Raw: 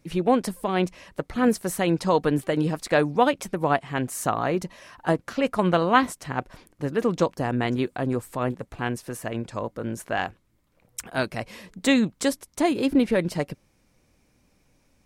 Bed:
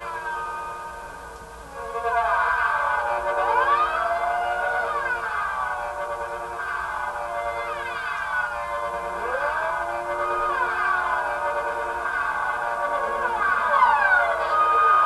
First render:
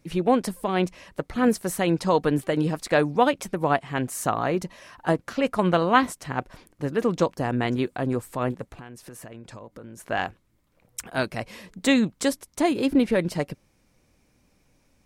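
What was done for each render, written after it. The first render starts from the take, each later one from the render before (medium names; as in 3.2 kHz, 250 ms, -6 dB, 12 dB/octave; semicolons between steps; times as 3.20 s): 8.72–10.08 s: compression, threshold -38 dBFS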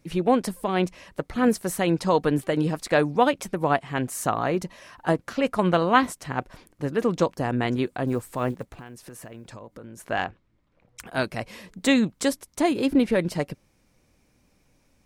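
8.07–9.55 s: block-companded coder 7-bit; 10.24–11.00 s: Bessel low-pass 3.4 kHz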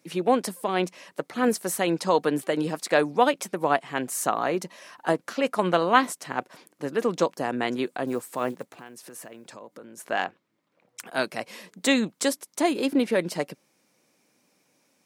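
high-pass 150 Hz 24 dB/octave; tone controls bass -7 dB, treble +3 dB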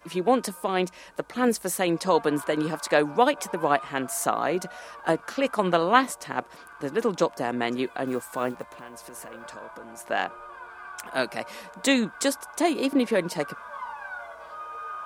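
add bed -19 dB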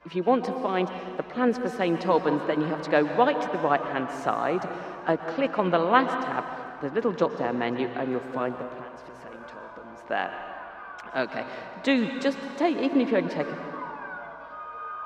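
distance through air 220 m; plate-style reverb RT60 2.4 s, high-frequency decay 0.75×, pre-delay 105 ms, DRR 7.5 dB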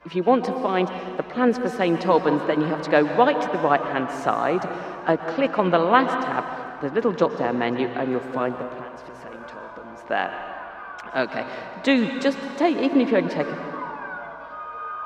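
trim +4 dB; peak limiter -3 dBFS, peak gain reduction 2 dB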